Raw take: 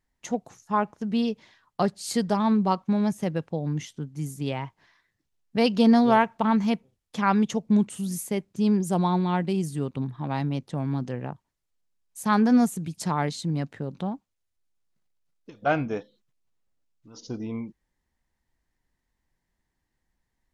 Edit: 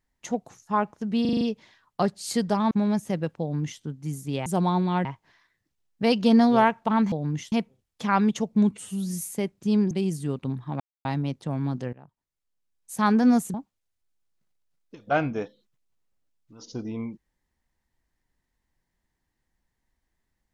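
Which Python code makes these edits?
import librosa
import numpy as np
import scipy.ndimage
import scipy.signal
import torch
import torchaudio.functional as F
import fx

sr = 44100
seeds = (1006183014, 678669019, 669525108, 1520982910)

y = fx.edit(x, sr, fx.stutter(start_s=1.21, slice_s=0.04, count=6),
    fx.cut(start_s=2.51, length_s=0.33),
    fx.duplicate(start_s=3.54, length_s=0.4, to_s=6.66),
    fx.stretch_span(start_s=7.85, length_s=0.42, factor=1.5),
    fx.move(start_s=8.84, length_s=0.59, to_s=4.59),
    fx.insert_silence(at_s=10.32, length_s=0.25),
    fx.fade_in_from(start_s=11.2, length_s=1.0, floor_db=-20.5),
    fx.cut(start_s=12.81, length_s=1.28), tone=tone)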